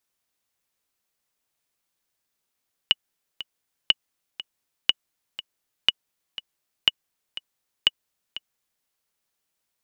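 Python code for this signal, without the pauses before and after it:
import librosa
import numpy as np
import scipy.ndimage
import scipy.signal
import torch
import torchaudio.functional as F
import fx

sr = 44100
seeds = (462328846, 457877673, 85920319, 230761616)

y = fx.click_track(sr, bpm=121, beats=2, bars=6, hz=2930.0, accent_db=16.0, level_db=-3.0)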